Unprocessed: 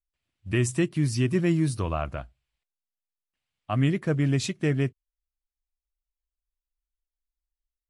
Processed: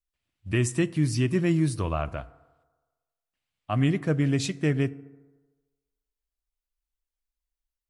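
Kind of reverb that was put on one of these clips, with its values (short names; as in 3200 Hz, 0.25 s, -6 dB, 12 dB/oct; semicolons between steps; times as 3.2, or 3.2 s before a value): FDN reverb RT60 1.3 s, low-frequency decay 0.8×, high-frequency decay 0.4×, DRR 16.5 dB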